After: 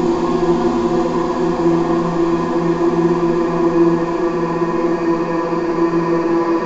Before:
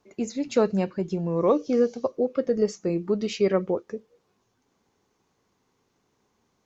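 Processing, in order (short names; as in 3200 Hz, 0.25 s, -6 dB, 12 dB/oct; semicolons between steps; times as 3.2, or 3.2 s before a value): slices in reverse order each 0.228 s, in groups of 3; HPF 180 Hz 24 dB/oct; high shelf 2300 Hz +8.5 dB; fixed phaser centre 550 Hz, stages 6; sine folder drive 18 dB, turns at -11 dBFS; Paulstretch 48×, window 0.50 s, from 0.73; flutter echo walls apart 10.2 m, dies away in 0.63 s; downsampling 16000 Hz; gain -2 dB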